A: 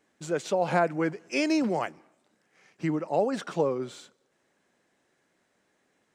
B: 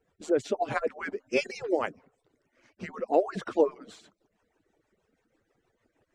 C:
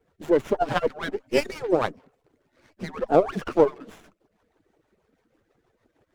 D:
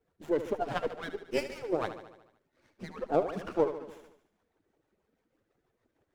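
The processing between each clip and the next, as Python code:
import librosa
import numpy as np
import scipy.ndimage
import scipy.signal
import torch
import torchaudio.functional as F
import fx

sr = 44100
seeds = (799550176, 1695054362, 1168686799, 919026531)

y1 = fx.hpss_only(x, sr, part='percussive')
y1 = fx.rotary(y1, sr, hz=6.3)
y1 = fx.tilt_eq(y1, sr, slope=-2.5)
y1 = F.gain(torch.from_numpy(y1), 4.5).numpy()
y2 = fx.running_max(y1, sr, window=9)
y2 = F.gain(torch.from_numpy(y2), 5.5).numpy()
y3 = fx.echo_feedback(y2, sr, ms=74, feedback_pct=59, wet_db=-11.5)
y3 = F.gain(torch.from_numpy(y3), -9.0).numpy()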